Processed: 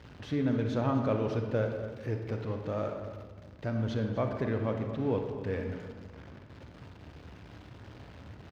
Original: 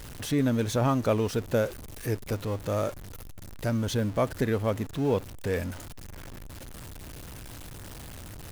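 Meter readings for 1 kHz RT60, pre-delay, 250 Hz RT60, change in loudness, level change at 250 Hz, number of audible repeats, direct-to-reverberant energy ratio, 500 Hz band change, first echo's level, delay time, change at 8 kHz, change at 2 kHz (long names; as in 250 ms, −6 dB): 1.3 s, 35 ms, 1.7 s, −4.0 dB, −3.0 dB, 1, 4.0 dB, −4.0 dB, −14.0 dB, 248 ms, below −20 dB, −5.5 dB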